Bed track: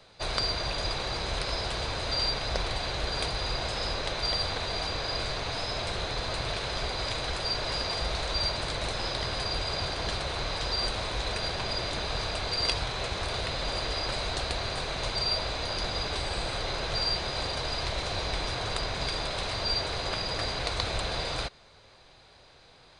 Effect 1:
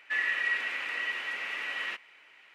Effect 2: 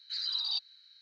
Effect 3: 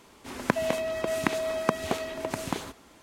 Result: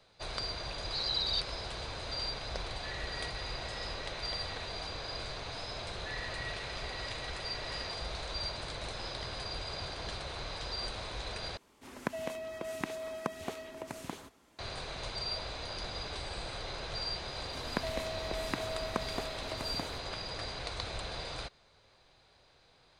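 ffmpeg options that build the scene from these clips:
-filter_complex "[1:a]asplit=2[a][b];[3:a]asplit=2[c][d];[0:a]volume=-8.5dB[e];[2:a]acontrast=66[f];[e]asplit=2[g][h];[g]atrim=end=11.574[i];[c]atrim=end=3.02,asetpts=PTS-STARTPTS,volume=-10.5dB[j];[h]atrim=start=14.586[k];[f]atrim=end=1.01,asetpts=PTS-STARTPTS,volume=-6.5dB,afade=t=in:d=0.004:c=hsin,afade=t=out:st=1.006:d=0.004:c=hsin,adelay=820[l];[a]atrim=end=2.54,asetpts=PTS-STARTPTS,volume=-17dB,afade=t=in:d=0.004:c=hsin,afade=t=out:st=2.536:d=0.004:c=hsin,adelay=2730[m];[b]atrim=end=2.54,asetpts=PTS-STARTPTS,volume=-14.5dB,afade=t=in:d=0.004:c=hsin,afade=t=out:st=2.536:d=0.004:c=hsin,adelay=5950[n];[d]atrim=end=3.02,asetpts=PTS-STARTPTS,volume=-10dB,afade=t=in:d=0.004:c=hsin,afade=t=out:st=3.016:d=0.004:c=hsin,adelay=17270[o];[i][j]acrossfade=d=0.004:c1=hsin:c2=hsin[p];[p][k]acrossfade=d=0.004:c1=hsin:c2=hsin[q];[q][l][m][n][o]amix=inputs=5:normalize=0"

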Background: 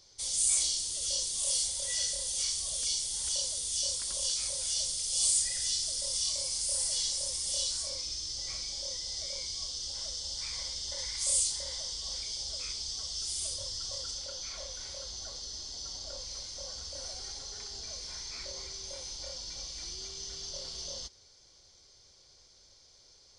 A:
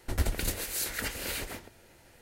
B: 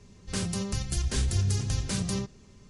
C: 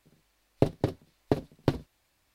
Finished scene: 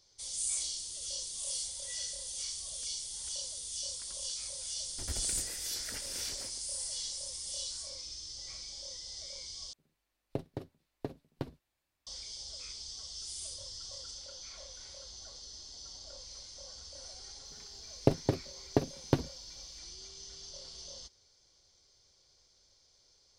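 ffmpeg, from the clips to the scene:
-filter_complex "[3:a]asplit=2[a][b];[0:a]volume=-7dB,asplit=2[c][d];[c]atrim=end=9.734[e];[a]atrim=end=2.34,asetpts=PTS-STARTPTS,volume=-13dB[f];[d]atrim=start=12.066[g];[1:a]atrim=end=2.21,asetpts=PTS-STARTPTS,volume=-12dB,afade=t=in:d=0.004:c=hsin,afade=t=out:st=2.206:d=0.004:c=hsin,adelay=4900[h];[b]atrim=end=2.34,asetpts=PTS-STARTPTS,volume=-2dB,afade=t=in:d=0.004:c=hsin,afade=t=out:st=2.336:d=0.004:c=hsin,adelay=17450[i];[e][f]acrossfade=d=0.004:c1=hsin:c2=hsin[j];[j][g]acrossfade=d=0.004:c1=hsin:c2=hsin[k];[k][h][i]amix=inputs=3:normalize=0"

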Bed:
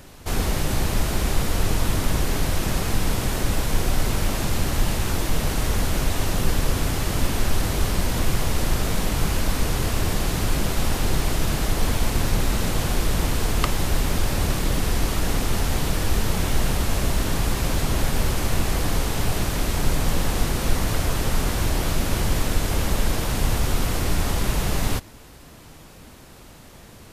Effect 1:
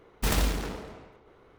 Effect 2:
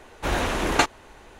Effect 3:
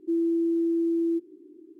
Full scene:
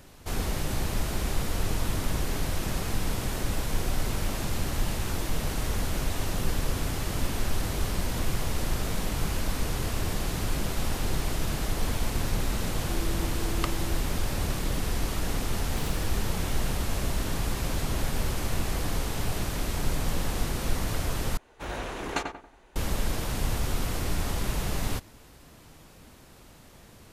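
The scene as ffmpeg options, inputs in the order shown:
-filter_complex "[0:a]volume=-6.5dB[a];[1:a]acompressor=threshold=-38dB:ratio=4:attack=73:release=37:knee=1:detection=peak[b];[2:a]asplit=2[c][d];[d]adelay=92,lowpass=f=1.7k:p=1,volume=-4dB,asplit=2[e][f];[f]adelay=92,lowpass=f=1.7k:p=1,volume=0.38,asplit=2[g][h];[h]adelay=92,lowpass=f=1.7k:p=1,volume=0.38,asplit=2[i][j];[j]adelay=92,lowpass=f=1.7k:p=1,volume=0.38,asplit=2[k][l];[l]adelay=92,lowpass=f=1.7k:p=1,volume=0.38[m];[c][e][g][i][k][m]amix=inputs=6:normalize=0[n];[a]asplit=2[o][p];[o]atrim=end=21.374[q];[n]atrim=end=1.39,asetpts=PTS-STARTPTS,volume=-11dB[r];[p]atrim=start=22.756[s];[3:a]atrim=end=1.79,asetpts=PTS-STARTPTS,volume=-15dB,afade=t=in:d=0.004:c=hsin,afade=t=out:st=1.786:d=0.004:c=hsin,adelay=12810[t];[b]atrim=end=1.58,asetpts=PTS-STARTPTS,volume=-8dB,afade=t=in:d=0.004:c=hsin,afade=t=out:st=1.576:d=0.004:c=hsin,adelay=15540[u];[q][r]acrossfade=d=0.004:c1=hsin:c2=hsin[v];[v][s]acrossfade=d=0.004:c1=hsin:c2=hsin[w];[w][t][u]amix=inputs=3:normalize=0"

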